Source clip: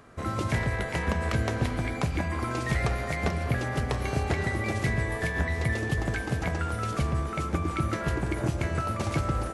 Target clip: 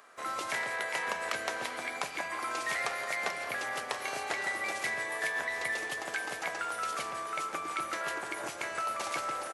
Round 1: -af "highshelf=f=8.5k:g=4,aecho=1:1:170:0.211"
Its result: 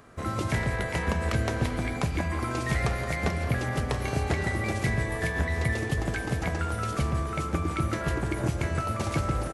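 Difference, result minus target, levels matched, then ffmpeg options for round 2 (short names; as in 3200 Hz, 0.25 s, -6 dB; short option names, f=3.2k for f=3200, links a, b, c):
1000 Hz band -4.0 dB
-af "highpass=740,highshelf=f=8.5k:g=4,aecho=1:1:170:0.211"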